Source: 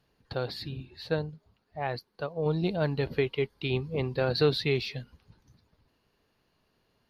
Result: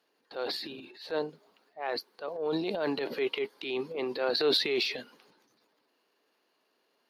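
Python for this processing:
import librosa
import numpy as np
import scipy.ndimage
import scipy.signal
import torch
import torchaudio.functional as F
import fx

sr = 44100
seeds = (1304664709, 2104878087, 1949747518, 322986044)

y = scipy.signal.sosfilt(scipy.signal.butter(4, 290.0, 'highpass', fs=sr, output='sos'), x)
y = fx.transient(y, sr, attack_db=-7, sustain_db=9)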